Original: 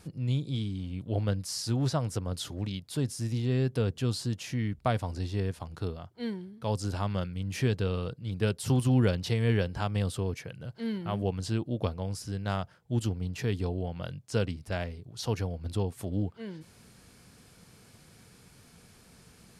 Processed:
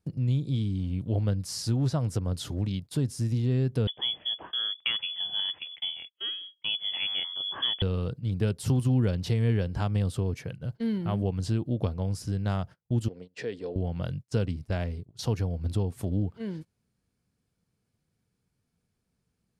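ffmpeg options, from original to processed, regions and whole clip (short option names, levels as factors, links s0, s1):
-filter_complex "[0:a]asettb=1/sr,asplit=3[s0][s1][s2];[s0]atrim=end=3.874[s3];[s1]atrim=start=3.87:end=7.82,asetpts=PTS-STARTPTS,afade=t=in:d=0.004:c=qsin,afade=t=out:st=3.946:d=0.004:c=qsin,lowpass=f=3000:t=q:w=0.5098,lowpass=f=3000:t=q:w=0.6013,lowpass=f=3000:t=q:w=0.9,lowpass=f=3000:t=q:w=2.563,afreqshift=-3500,highpass=60[s4];[s2]atrim=start=7.816[s5];[s3][s4]acrossfade=d=0.004:c1=hsin:c2=qsin[s6];[s6][s5]acrossfade=d=0.004:c1=qsin:c2=hsin,asettb=1/sr,asplit=3[s7][s8][s9];[s7]atrim=end=13.084[s10];[s8]atrim=start=13.08:end=13.76,asetpts=PTS-STARTPTS,afade=t=in:d=0.004:c=qsin,afade=t=out:st=0.676:d=0.004:c=qsin,acompressor=threshold=0.0178:ratio=2:attack=3.2:release=140:knee=1:detection=peak,highpass=330,equalizer=f=500:t=q:w=4:g=10,equalizer=f=850:t=q:w=4:g=-5,equalizer=f=1200:t=q:w=4:g=-4,equalizer=f=1800:t=q:w=4:g=4,equalizer=f=6400:t=q:w=4:g=-7,lowpass=f=7900:w=0.5412,lowpass=f=7900:w=1.3066[s11];[s9]atrim=start=13.756[s12];[s10][s11]acrossfade=d=0.004:c1=hsin:c2=qsin[s13];[s13][s12]acrossfade=d=0.004:c1=qsin:c2=hsin,agate=range=0.0447:threshold=0.00708:ratio=16:detection=peak,lowshelf=f=410:g=8,acompressor=threshold=0.0501:ratio=2"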